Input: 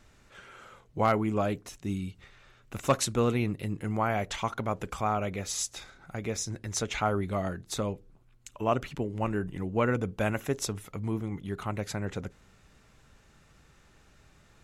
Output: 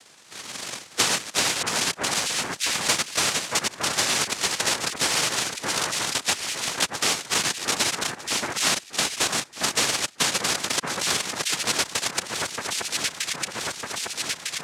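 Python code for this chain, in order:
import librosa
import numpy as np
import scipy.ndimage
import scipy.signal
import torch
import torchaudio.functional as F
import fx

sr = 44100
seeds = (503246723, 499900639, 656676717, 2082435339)

p1 = fx.reverse_delay_fb(x, sr, ms=328, feedback_pct=78, wet_db=-10)
p2 = fx.highpass(p1, sr, hz=160.0, slope=6)
p3 = fx.peak_eq(p2, sr, hz=1900.0, db=-11.0, octaves=1.3)
p4 = fx.auto_wah(p3, sr, base_hz=570.0, top_hz=1300.0, q=6.0, full_db=-32.0, direction='down')
p5 = fx.fuzz(p4, sr, gain_db=42.0, gate_db=-48.0)
p6 = p4 + (p5 * librosa.db_to_amplitude(-6.0))
p7 = fx.noise_vocoder(p6, sr, seeds[0], bands=1)
p8 = p7 + fx.echo_alternate(p7, sr, ms=626, hz=1800.0, feedback_pct=53, wet_db=-6, dry=0)
p9 = fx.band_squash(p8, sr, depth_pct=100)
y = p9 * librosa.db_to_amplitude(-1.5)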